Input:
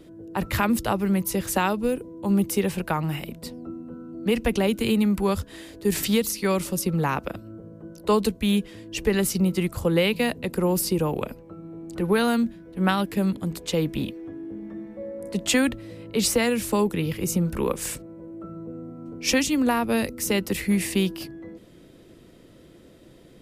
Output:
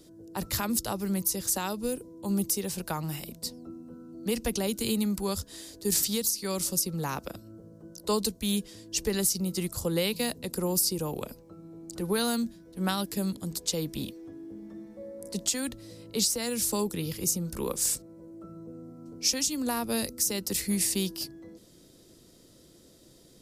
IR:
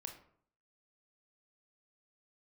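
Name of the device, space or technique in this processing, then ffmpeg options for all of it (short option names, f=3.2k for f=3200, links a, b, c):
over-bright horn tweeter: -af "highshelf=f=3.6k:t=q:w=1.5:g=11.5,alimiter=limit=-7.5dB:level=0:latency=1:release=334,volume=-7dB"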